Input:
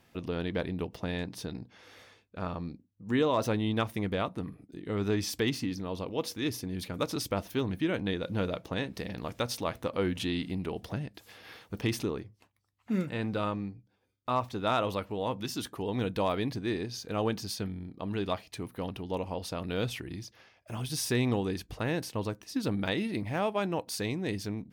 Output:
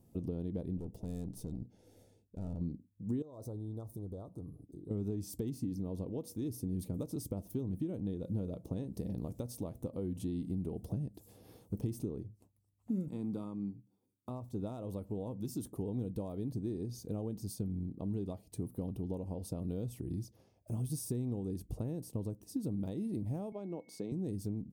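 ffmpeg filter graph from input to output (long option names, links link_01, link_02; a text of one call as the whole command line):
ffmpeg -i in.wav -filter_complex "[0:a]asettb=1/sr,asplit=3[link_01][link_02][link_03];[link_01]atrim=end=0.774[link_04];[link_02]atrim=start=0.77:end=2.61,asetpts=PTS-STARTPTS,afade=type=in:duration=0.004:curve=qsin,afade=type=out:start_time=1.836:duration=0.004:curve=qsin,asuperstop=centerf=1100:order=4:qfactor=3,aeval=exprs='(tanh(79.4*val(0)+0.5)-tanh(0.5))/79.4':channel_layout=same[link_05];[link_03]atrim=start=2.606[link_06];[link_04][link_05]acrossfade=duration=0.004:curve1=hsin:curve2=qsin[link_07];[link_07][link_06]acrossfade=duration=0.004:curve1=qsin:curve2=hsin,asettb=1/sr,asplit=3[link_08][link_09][link_10];[link_08]atrim=end=3.224[link_11];[link_09]atrim=start=3.22:end=4.91,asetpts=PTS-STARTPTS,afade=type=in:duration=0.004:curve=qsin,afade=type=out:start_time=1.686:duration=0.004:curve=qsin,equalizer=frequency=210:width_type=o:width=0.74:gain=-9,acompressor=threshold=-48dB:ratio=2:attack=3.2:release=140:knee=1:detection=peak,asuperstop=centerf=2300:order=8:qfactor=1[link_12];[link_10]atrim=start=4.906[link_13];[link_11][link_12]acrossfade=duration=0.004:curve1=hsin:curve2=qsin[link_14];[link_14][link_13]acrossfade=duration=0.004:curve1=qsin:curve2=hsin,asettb=1/sr,asplit=3[link_15][link_16][link_17];[link_15]atrim=end=13.084[link_18];[link_16]atrim=start=13.08:end=14.29,asetpts=PTS-STARTPTS,afade=type=in:duration=0.004:curve=qsin,afade=type=out:start_time=1.206:duration=0.004:curve=qsin,highpass=210,aecho=1:1:0.9:0.52,atrim=end_sample=53361[link_19];[link_17]atrim=start=14.286[link_20];[link_18][link_19]acrossfade=duration=0.004:curve1=hsin:curve2=qsin[link_21];[link_21][link_20]acrossfade=duration=0.004:curve1=qsin:curve2=hsin,asettb=1/sr,asplit=3[link_22][link_23][link_24];[link_22]atrim=end=23.524[link_25];[link_23]atrim=start=23.52:end=24.12,asetpts=PTS-STARTPTS,afade=type=in:duration=0.004:curve=qsin,afade=type=out:start_time=0.596:duration=0.004:curve=qsin,aeval=exprs='val(0)+0.00891*sin(2*PI*2200*n/s)':channel_layout=same,acrossover=split=180 5400:gain=0.0631 1 0.141[link_26][link_27][link_28];[link_26][link_27][link_28]amix=inputs=3:normalize=0,acompressor=mode=upward:threshold=-36dB:ratio=2.5:attack=3.2:release=140:knee=2.83:detection=peak[link_29];[link_24]atrim=start=24.116[link_30];[link_25][link_29]acrossfade=duration=0.004:curve1=hsin:curve2=qsin[link_31];[link_31][link_30]acrossfade=duration=0.004:curve1=qsin:curve2=hsin,acompressor=threshold=-35dB:ratio=6,firequalizer=gain_entry='entry(160,0);entry(1600,-30);entry(8300,-5)':delay=0.05:min_phase=1,volume=4dB" out.wav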